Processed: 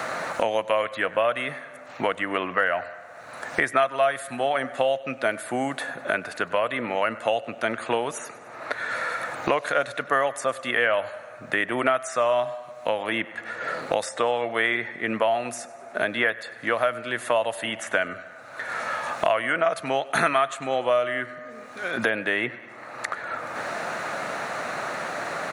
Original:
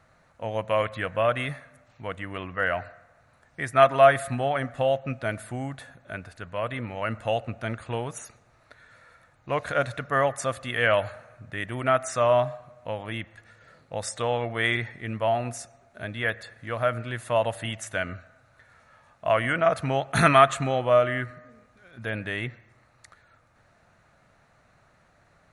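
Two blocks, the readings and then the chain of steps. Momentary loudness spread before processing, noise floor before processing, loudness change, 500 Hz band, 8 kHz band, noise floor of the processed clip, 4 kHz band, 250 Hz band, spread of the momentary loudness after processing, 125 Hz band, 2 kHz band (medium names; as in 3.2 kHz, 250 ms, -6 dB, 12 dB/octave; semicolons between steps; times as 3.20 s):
17 LU, -62 dBFS, 0.0 dB, +0.5 dB, +1.5 dB, -43 dBFS, +2.5 dB, +1.0 dB, 10 LU, -11.0 dB, +4.0 dB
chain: high-pass 310 Hz 12 dB/octave; feedback delay 98 ms, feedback 42%, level -22 dB; three bands compressed up and down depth 100%; trim +2.5 dB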